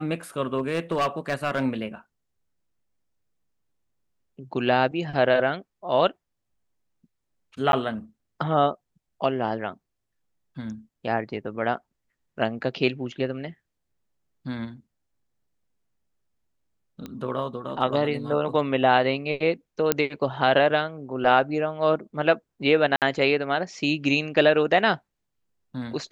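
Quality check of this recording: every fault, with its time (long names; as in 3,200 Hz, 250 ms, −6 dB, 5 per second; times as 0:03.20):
0:00.57–0:01.64: clipping −19 dBFS
0:07.72–0:07.73: drop-out 11 ms
0:17.06: click −22 dBFS
0:19.92: click −3 dBFS
0:22.96–0:23.02: drop-out 58 ms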